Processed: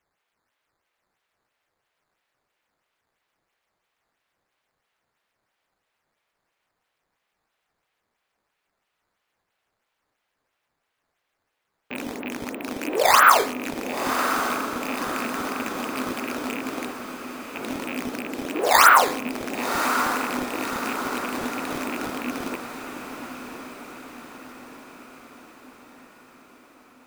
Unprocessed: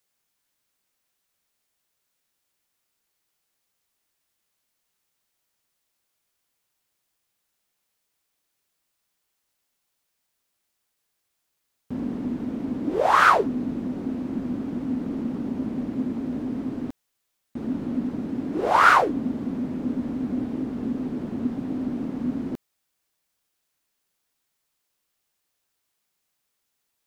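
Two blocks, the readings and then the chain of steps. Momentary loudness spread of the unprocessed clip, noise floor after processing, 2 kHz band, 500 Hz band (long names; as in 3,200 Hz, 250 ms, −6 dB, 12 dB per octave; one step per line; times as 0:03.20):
14 LU, −79 dBFS, +4.0 dB, +2.0 dB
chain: loose part that buzzes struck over −30 dBFS, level −25 dBFS
three-way crossover with the lows and the highs turned down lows −22 dB, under 390 Hz, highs −21 dB, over 3,400 Hz
hum removal 46.46 Hz, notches 31
in parallel at −0.5 dB: downward compressor, threshold −32 dBFS, peak gain reduction 18.5 dB
on the sum: sample-and-hold swept by an LFO 9×, swing 160% 3 Hz
on a send: feedback delay with all-pass diffusion 1,085 ms, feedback 55%, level −8 dB
on the sum: level +2 dB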